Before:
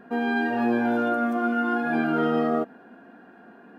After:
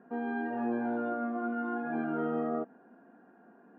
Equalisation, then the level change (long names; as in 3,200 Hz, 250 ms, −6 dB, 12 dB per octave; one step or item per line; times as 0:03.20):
high-pass filter 120 Hz
low-pass filter 1,400 Hz 12 dB per octave
−8.5 dB